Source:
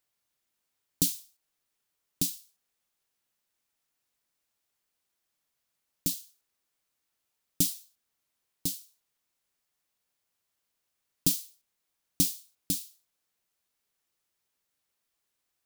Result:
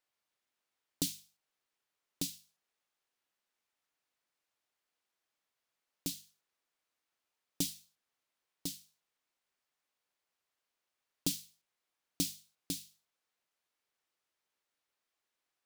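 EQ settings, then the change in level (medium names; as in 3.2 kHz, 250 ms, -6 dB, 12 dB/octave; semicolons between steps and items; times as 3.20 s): low-pass 3.2 kHz 6 dB/octave; bass shelf 230 Hz -11 dB; hum notches 50/100/150/200 Hz; 0.0 dB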